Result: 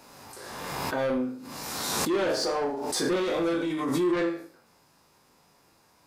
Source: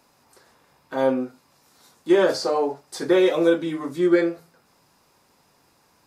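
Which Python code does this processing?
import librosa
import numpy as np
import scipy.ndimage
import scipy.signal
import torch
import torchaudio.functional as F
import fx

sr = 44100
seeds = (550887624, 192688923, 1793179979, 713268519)

y = fx.spec_trails(x, sr, decay_s=0.45)
y = 10.0 ** (-20.0 / 20.0) * np.tanh(y / 10.0 ** (-20.0 / 20.0))
y = fx.room_flutter(y, sr, wall_m=6.7, rt60_s=0.29)
y = fx.pre_swell(y, sr, db_per_s=27.0)
y = y * 10.0 ** (-3.5 / 20.0)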